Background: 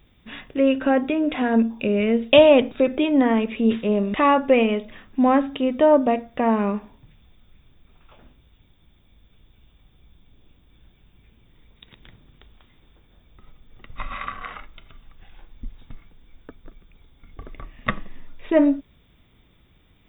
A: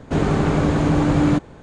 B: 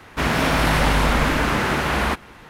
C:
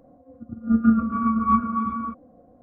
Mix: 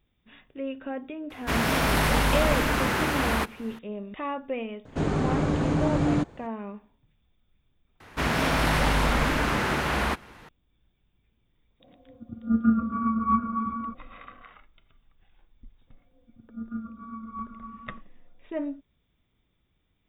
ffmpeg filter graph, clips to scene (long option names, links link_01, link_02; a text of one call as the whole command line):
ffmpeg -i bed.wav -i cue0.wav -i cue1.wav -i cue2.wav -filter_complex "[2:a]asplit=2[link_01][link_02];[3:a]asplit=2[link_03][link_04];[0:a]volume=-15dB[link_05];[link_01]highshelf=frequency=11000:gain=10.5[link_06];[link_05]asplit=2[link_07][link_08];[link_07]atrim=end=8.004[link_09];[link_02]atrim=end=2.49,asetpts=PTS-STARTPTS,volume=-5dB[link_10];[link_08]atrim=start=10.486[link_11];[link_06]atrim=end=2.49,asetpts=PTS-STARTPTS,volume=-5dB,afade=type=in:duration=0.004:curve=hsin,afade=type=out:start_time=2.486:duration=0.004:curve=hsin,adelay=1300[link_12];[1:a]atrim=end=1.62,asetpts=PTS-STARTPTS,volume=-7dB,afade=type=in:duration=0.004:curve=hsin,afade=type=out:start_time=1.616:duration=0.004:curve=hsin,adelay=213885S[link_13];[link_03]atrim=end=2.62,asetpts=PTS-STARTPTS,volume=-4dB,afade=type=in:duration=0.004:curve=hsin,afade=type=out:start_time=2.616:duration=0.004:curve=hsin,adelay=11800[link_14];[link_04]atrim=end=2.62,asetpts=PTS-STARTPTS,volume=-17.5dB,afade=type=in:duration=0.004:curve=hsin,afade=type=out:start_time=2.616:duration=0.004:curve=hsin,adelay=15870[link_15];[link_09][link_10]acrossfade=duration=0.004:curve1=hsin:curve2=hsin[link_16];[link_16][link_11]acrossfade=duration=0.004:curve1=hsin:curve2=hsin[link_17];[link_17][link_12][link_13][link_14][link_15]amix=inputs=5:normalize=0" out.wav